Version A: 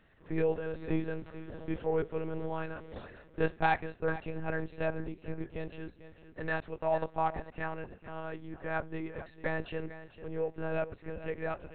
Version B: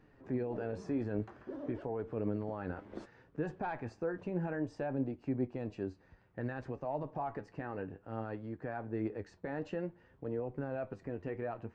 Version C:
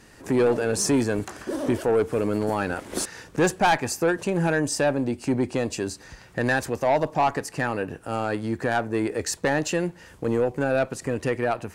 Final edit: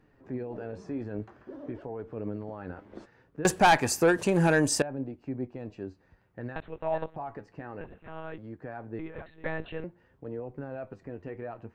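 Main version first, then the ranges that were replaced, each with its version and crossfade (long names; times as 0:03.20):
B
0:03.45–0:04.82: punch in from C
0:06.56–0:07.16: punch in from A
0:07.81–0:08.38: punch in from A
0:08.99–0:09.84: punch in from A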